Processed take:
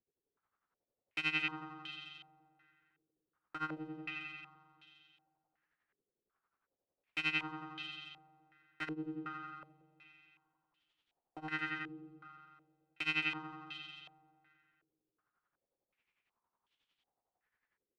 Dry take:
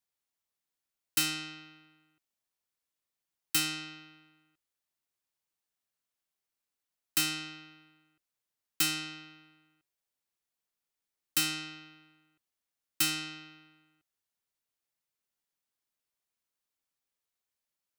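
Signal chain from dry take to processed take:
notch filter 620 Hz, Q 14
in parallel at +1.5 dB: downward compressor, threshold −43 dBFS, peak gain reduction 18 dB
on the sum: brickwall limiter −22.5 dBFS, peak gain reduction 8.5 dB
hard clipping −34 dBFS, distortion −8 dB
amplitude tremolo 11 Hz, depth 90%
repeating echo 221 ms, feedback 52%, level −9.5 dB
on a send at −11.5 dB: convolution reverb RT60 2.0 s, pre-delay 40 ms
on the sum: low-pass on a step sequencer 2.7 Hz 420–3,200 Hz
level +1.5 dB

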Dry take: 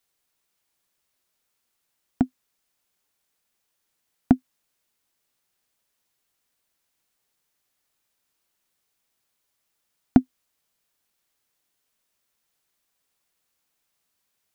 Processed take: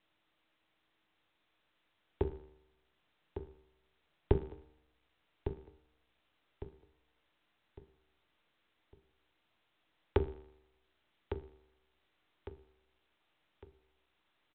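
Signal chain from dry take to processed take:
stylus tracing distortion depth 0.21 ms
brickwall limiter −6 dBFS, peak gain reduction 3 dB
0:02.23–0:04.32: low-shelf EQ 67 Hz +9.5 dB
mains-hum notches 50/100/150/200/250/300/350/400/450/500 Hz
frequency shifter −17 Hz
tuned comb filter 74 Hz, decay 0.78 s, harmonics all, mix 60%
ring modulation 160 Hz
parametric band 160 Hz −7.5 dB 0.27 octaves
tuned comb filter 150 Hz, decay 0.15 s, harmonics all, mix 40%
repeating echo 1,155 ms, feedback 38%, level −9.5 dB
level +4.5 dB
mu-law 64 kbit/s 8,000 Hz

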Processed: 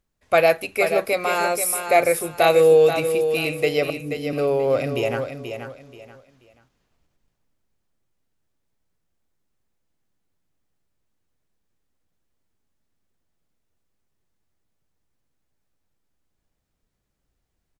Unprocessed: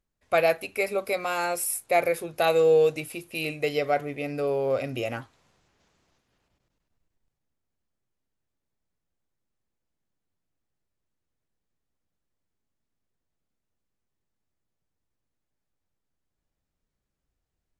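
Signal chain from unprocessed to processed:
0:03.90–0:04.33: elliptic band-stop filter 320–5,900 Hz
on a send: repeating echo 482 ms, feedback 27%, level −8 dB
on the sum: level +5.5 dB

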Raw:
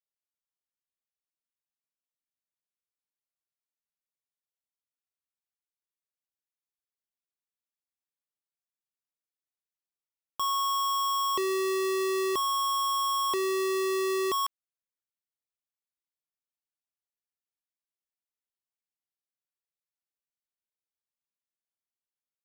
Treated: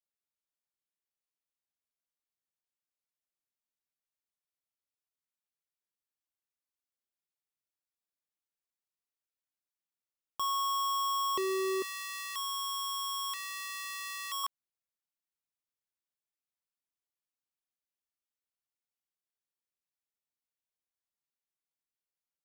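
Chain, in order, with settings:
0:11.82–0:14.44: high-pass filter 1,300 Hz 24 dB per octave
level −3.5 dB

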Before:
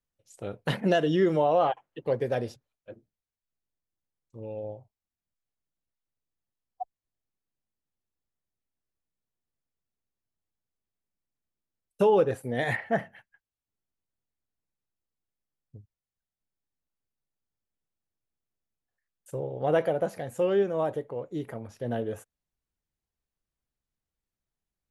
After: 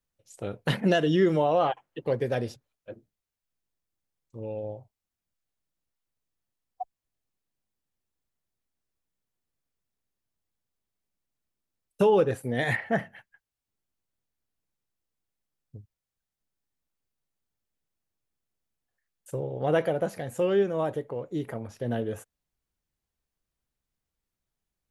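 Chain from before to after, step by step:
dynamic equaliser 680 Hz, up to −4 dB, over −36 dBFS, Q 0.8
level +3 dB

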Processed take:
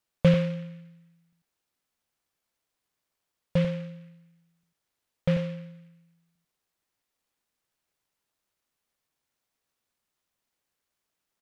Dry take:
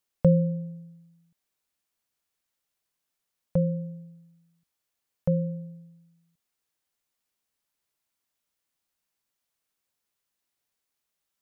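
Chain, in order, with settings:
single-tap delay 93 ms −7.5 dB
short delay modulated by noise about 2,000 Hz, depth 0.073 ms

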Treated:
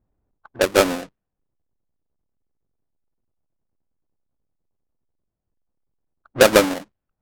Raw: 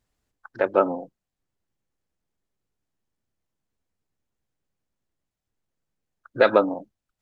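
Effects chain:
each half-wave held at its own peak
low-pass that shuts in the quiet parts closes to 920 Hz, open at −17.5 dBFS

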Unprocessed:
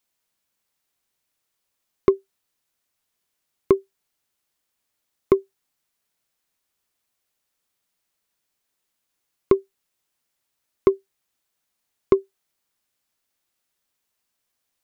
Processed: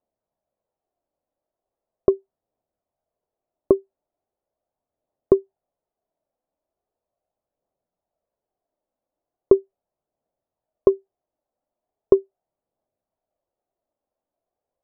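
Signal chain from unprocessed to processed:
phase shifter 0.39 Hz, delay 3.9 ms, feedback 29%
low-pass with resonance 650 Hz, resonance Q 3.6
level −1.5 dB

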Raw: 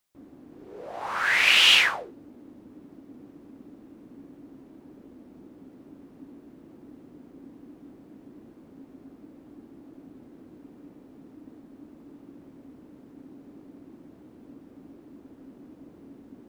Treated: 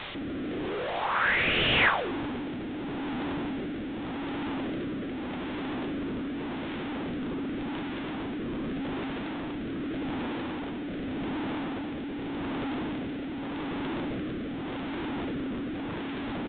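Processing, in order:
linear delta modulator 32 kbit/s, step −31 dBFS
rotating-speaker cabinet horn 0.85 Hz
downsampling to 8,000 Hz
level +5.5 dB

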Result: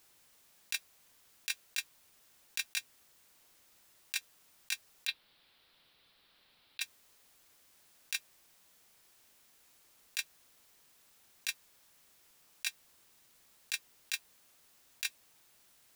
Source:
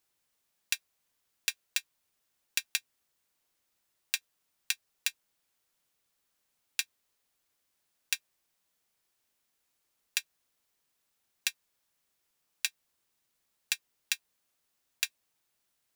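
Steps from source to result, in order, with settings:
0:05.07–0:06.81: high shelf with overshoot 5,100 Hz −9.5 dB, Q 3
compressor whose output falls as the input rises −35 dBFS, ratio −0.5
level +4.5 dB

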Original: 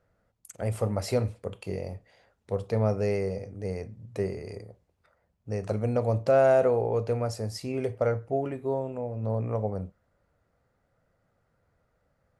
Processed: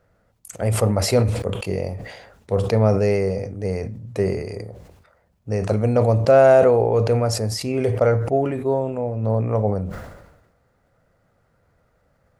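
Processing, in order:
level that may fall only so fast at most 54 dB per second
level +8 dB

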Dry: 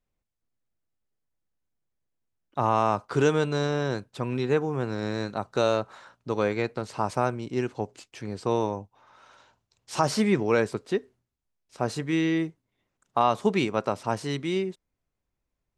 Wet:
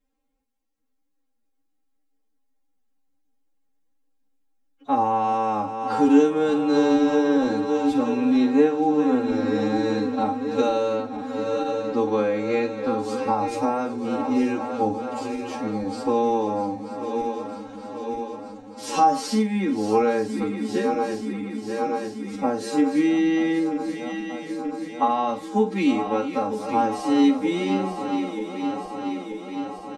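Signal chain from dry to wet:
feedback delay that plays each chunk backwards 245 ms, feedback 82%, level −11.5 dB
comb filter 3.7 ms, depth 100%
downward compressor 6 to 1, threshold −23 dBFS, peak gain reduction 9 dB
hollow resonant body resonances 280/430/800 Hz, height 13 dB, ringing for 80 ms
phase-vocoder stretch with locked phases 1.9×
on a send: flutter between parallel walls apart 8 metres, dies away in 0.24 s

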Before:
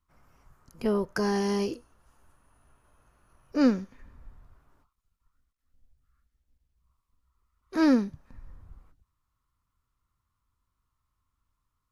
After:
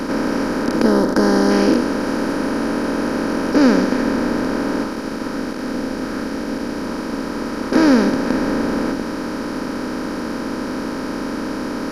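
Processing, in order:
compressor on every frequency bin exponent 0.2
0:00.82–0:01.51: parametric band 2,500 Hz −10.5 dB 0.58 octaves
level +5.5 dB

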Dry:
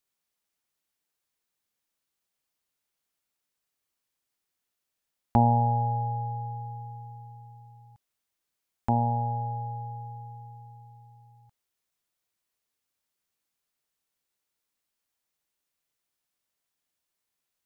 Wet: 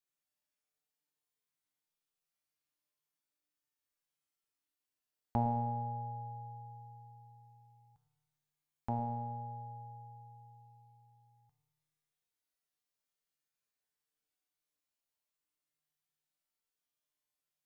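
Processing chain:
tuned comb filter 150 Hz, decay 1.6 s, mix 90%
delay with a low-pass on its return 106 ms, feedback 45%, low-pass 460 Hz, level −12 dB
level +7.5 dB

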